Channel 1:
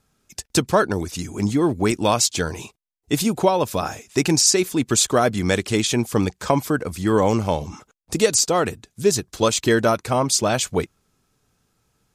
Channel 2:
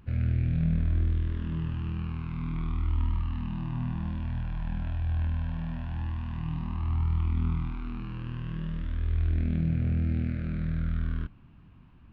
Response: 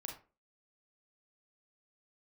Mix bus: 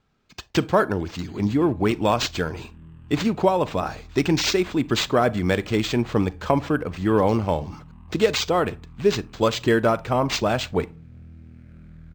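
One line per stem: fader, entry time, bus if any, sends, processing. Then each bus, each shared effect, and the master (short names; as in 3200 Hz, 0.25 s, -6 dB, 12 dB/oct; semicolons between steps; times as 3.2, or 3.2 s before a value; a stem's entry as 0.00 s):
-2.5 dB, 0.00 s, send -11 dB, bell 4900 Hz -5 dB 0.92 oct
-8.0 dB, 1.30 s, no send, compressor, threshold -33 dBFS, peak gain reduction 11.5 dB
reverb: on, RT60 0.35 s, pre-delay 32 ms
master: decimation joined by straight lines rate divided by 4×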